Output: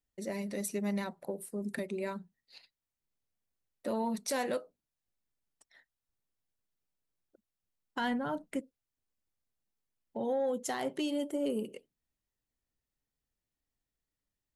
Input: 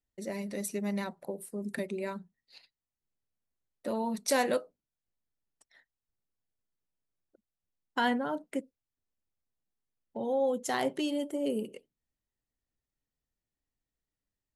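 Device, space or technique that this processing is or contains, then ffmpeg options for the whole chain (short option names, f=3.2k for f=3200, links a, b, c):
soft clipper into limiter: -filter_complex "[0:a]asplit=3[a][b][c];[a]afade=t=out:st=7.98:d=0.02[d];[b]asubboost=boost=4:cutoff=160,afade=t=in:st=7.98:d=0.02,afade=t=out:st=8.59:d=0.02[e];[c]afade=t=in:st=8.59:d=0.02[f];[d][e][f]amix=inputs=3:normalize=0,asoftclip=type=tanh:threshold=-18dB,alimiter=level_in=1dB:limit=-24dB:level=0:latency=1:release=239,volume=-1dB"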